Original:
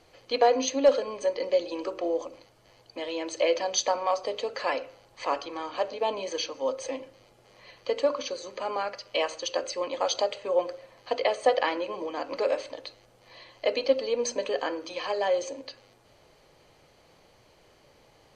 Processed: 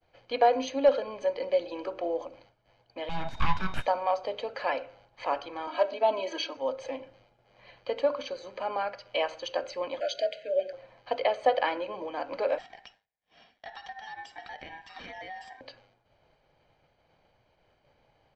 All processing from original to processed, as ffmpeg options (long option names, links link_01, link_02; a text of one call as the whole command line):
ffmpeg -i in.wav -filter_complex "[0:a]asettb=1/sr,asplit=3[link_01][link_02][link_03];[link_01]atrim=end=3.094[link_04];[link_02]atrim=start=3.09:end=3.86,asetpts=PTS-STARTPTS,afade=type=in:duration=0.004:curve=qsin,afade=type=out:start_time=0.766:duration=0.004:curve=qsin,lowshelf=frequency=440:gain=6.5,aeval=exprs='abs(val(0))':channel_layout=same,aeval=exprs='val(0)+0.00398*sin(2*PI*3700*n/s)':channel_layout=same[link_05];[link_03]atrim=start=3.856[link_06];[link_04][link_05]acrossfade=duration=0.004:curve1=hsin:curve2=qsin[link_07];[link_07][link_06]acrossfade=duration=0.004:curve1=qsin:curve2=hsin,asettb=1/sr,asplit=3[link_08][link_09][link_10];[link_08]atrim=end=5.674[link_11];[link_09]atrim=start=5.67:end=6.57,asetpts=PTS-STARTPTS,afade=type=in:duration=0.004:curve=qsin,afade=type=out:start_time=0.896:duration=0.004:curve=qsin,highpass=frequency=190:width=0.5412,highpass=frequency=190:width=1.3066,aecho=1:1:3.1:0.99,atrim=end_sample=39690[link_12];[link_10]atrim=start=6.566[link_13];[link_11][link_12]acrossfade=duration=0.004:curve1=hsin:curve2=qsin[link_14];[link_14][link_13]acrossfade=duration=0.004:curve1=qsin:curve2=hsin,asettb=1/sr,asplit=3[link_15][link_16][link_17];[link_15]atrim=end=10.004[link_18];[link_16]atrim=start=10:end=10.73,asetpts=PTS-STARTPTS,afade=type=in:duration=0.004:curve=qsin,afade=type=out:start_time=0.726:duration=0.004:curve=qsin,lowshelf=frequency=180:gain=-10.5,afreqshift=34,asuperstop=centerf=1000:order=20:qfactor=1.4[link_19];[link_17]atrim=start=10.726[link_20];[link_18][link_19]acrossfade=duration=0.004:curve1=hsin:curve2=qsin[link_21];[link_21][link_20]acrossfade=duration=0.004:curve1=qsin:curve2=hsin,asettb=1/sr,asplit=3[link_22][link_23][link_24];[link_22]atrim=end=12.584[link_25];[link_23]atrim=start=12.58:end=15.61,asetpts=PTS-STARTPTS,afade=type=in:duration=0.004:curve=qsin,afade=type=out:start_time=3.026:duration=0.004:curve=qsin,highpass=frequency=910:poles=1,acompressor=threshold=-34dB:ratio=6:attack=3.2:release=140:knee=1:detection=peak,aeval=exprs='val(0)*sin(2*PI*1300*n/s)':channel_layout=same[link_26];[link_24]atrim=start=15.606[link_27];[link_25][link_26]acrossfade=duration=0.004:curve1=hsin:curve2=qsin[link_28];[link_28][link_27]acrossfade=duration=0.004:curve1=qsin:curve2=hsin,lowpass=3100,agate=range=-33dB:threshold=-53dB:ratio=3:detection=peak,aecho=1:1:1.3:0.35,volume=-1.5dB" out.wav